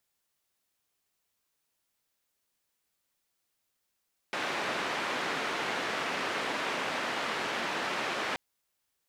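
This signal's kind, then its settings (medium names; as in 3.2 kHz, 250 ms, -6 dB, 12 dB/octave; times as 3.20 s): noise band 240–2100 Hz, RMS -33 dBFS 4.03 s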